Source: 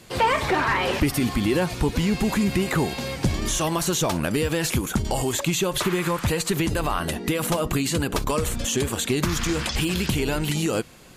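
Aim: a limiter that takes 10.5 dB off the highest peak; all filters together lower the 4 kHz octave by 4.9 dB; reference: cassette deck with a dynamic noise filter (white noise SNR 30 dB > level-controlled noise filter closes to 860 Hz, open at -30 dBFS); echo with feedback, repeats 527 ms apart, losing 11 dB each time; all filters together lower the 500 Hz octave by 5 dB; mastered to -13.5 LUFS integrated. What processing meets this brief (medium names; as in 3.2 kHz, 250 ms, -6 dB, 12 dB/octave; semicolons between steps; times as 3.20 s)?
peaking EQ 500 Hz -6.5 dB; peaking EQ 4 kHz -6.5 dB; peak limiter -23.5 dBFS; feedback delay 527 ms, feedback 28%, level -11 dB; white noise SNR 30 dB; level-controlled noise filter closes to 860 Hz, open at -30 dBFS; trim +18.5 dB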